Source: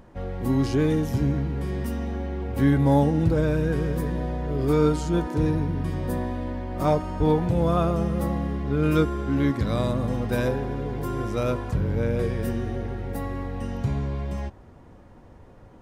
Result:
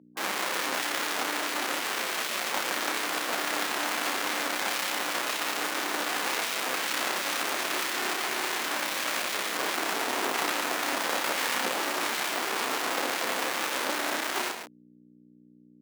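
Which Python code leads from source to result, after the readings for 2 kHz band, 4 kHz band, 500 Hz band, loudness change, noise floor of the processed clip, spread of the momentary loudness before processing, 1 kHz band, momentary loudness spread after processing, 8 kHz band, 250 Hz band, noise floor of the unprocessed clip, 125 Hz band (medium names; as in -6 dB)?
+10.5 dB, +14.5 dB, -8.5 dB, -3.0 dB, -57 dBFS, 9 LU, +2.5 dB, 1 LU, +16.0 dB, -15.0 dB, -49 dBFS, -33.0 dB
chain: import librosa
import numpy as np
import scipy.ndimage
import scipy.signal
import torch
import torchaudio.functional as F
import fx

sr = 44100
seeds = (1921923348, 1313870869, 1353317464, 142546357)

p1 = fx.chord_vocoder(x, sr, chord='major triad', root=48)
p2 = fx.lowpass(p1, sr, hz=1400.0, slope=6)
p3 = fx.schmitt(p2, sr, flips_db=-40.0)
p4 = fx.doubler(p3, sr, ms=31.0, db=-5.0)
p5 = p4 + fx.echo_single(p4, sr, ms=136, db=-6.5, dry=0)
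p6 = fx.spec_gate(p5, sr, threshold_db=-20, keep='weak')
p7 = fx.add_hum(p6, sr, base_hz=60, snr_db=13)
p8 = fx.cheby_harmonics(p7, sr, harmonics=(4,), levels_db=(-8,), full_scale_db=-19.5)
p9 = scipy.signal.sosfilt(scipy.signal.butter(4, 220.0, 'highpass', fs=sr, output='sos'), p8)
y = p9 * librosa.db_to_amplitude(3.5)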